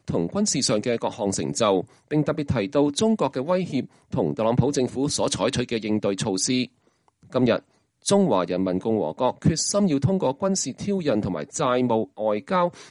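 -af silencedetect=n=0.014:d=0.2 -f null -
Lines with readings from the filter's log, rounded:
silence_start: 1.84
silence_end: 2.11 | silence_duration: 0.27
silence_start: 3.85
silence_end: 4.12 | silence_duration: 0.27
silence_start: 6.66
silence_end: 7.32 | silence_duration: 0.67
silence_start: 7.59
silence_end: 8.06 | silence_duration: 0.47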